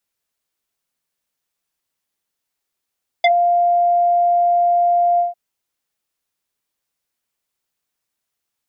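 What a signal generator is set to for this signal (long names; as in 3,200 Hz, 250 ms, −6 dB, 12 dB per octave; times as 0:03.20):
subtractive voice square F5 24 dB per octave, low-pass 790 Hz, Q 2.3, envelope 2.5 octaves, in 0.07 s, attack 4.6 ms, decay 0.08 s, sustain −9.5 dB, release 0.15 s, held 1.95 s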